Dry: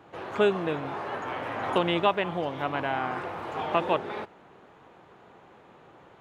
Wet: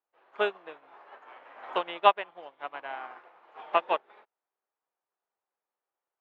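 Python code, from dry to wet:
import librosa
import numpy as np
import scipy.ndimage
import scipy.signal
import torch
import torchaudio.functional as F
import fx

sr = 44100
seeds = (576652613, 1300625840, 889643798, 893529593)

y = fx.bandpass_edges(x, sr, low_hz=580.0, high_hz=3500.0)
y = fx.upward_expand(y, sr, threshold_db=-49.0, expansion=2.5)
y = y * 10.0 ** (6.5 / 20.0)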